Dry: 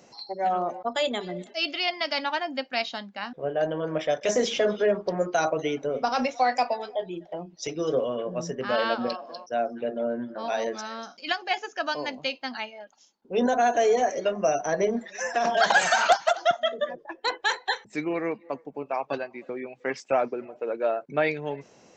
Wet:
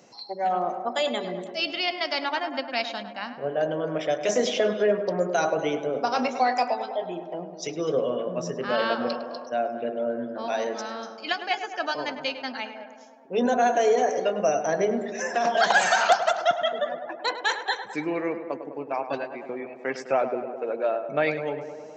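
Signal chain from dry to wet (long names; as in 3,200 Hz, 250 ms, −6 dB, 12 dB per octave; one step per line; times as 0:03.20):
high-pass filter 90 Hz
on a send: tape delay 103 ms, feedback 80%, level −9 dB, low-pass 2,000 Hz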